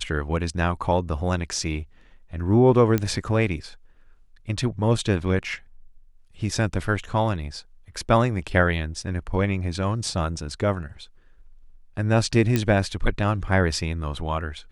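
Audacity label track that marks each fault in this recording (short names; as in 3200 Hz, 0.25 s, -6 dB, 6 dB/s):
2.980000	2.980000	pop -10 dBFS
12.560000	12.560000	pop -8 dBFS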